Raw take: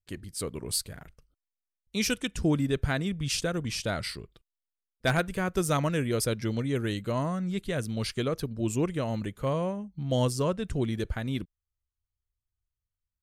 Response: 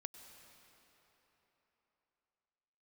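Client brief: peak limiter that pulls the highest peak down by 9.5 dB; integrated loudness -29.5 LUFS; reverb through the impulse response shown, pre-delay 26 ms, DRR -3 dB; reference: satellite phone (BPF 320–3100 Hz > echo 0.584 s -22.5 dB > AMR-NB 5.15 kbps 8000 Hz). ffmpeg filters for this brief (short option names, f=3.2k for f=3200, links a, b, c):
-filter_complex "[0:a]alimiter=limit=-23.5dB:level=0:latency=1,asplit=2[a][b];[1:a]atrim=start_sample=2205,adelay=26[c];[b][c]afir=irnorm=-1:irlink=0,volume=7.5dB[d];[a][d]amix=inputs=2:normalize=0,highpass=320,lowpass=3.1k,aecho=1:1:584:0.075,volume=6dB" -ar 8000 -c:a libopencore_amrnb -b:a 5150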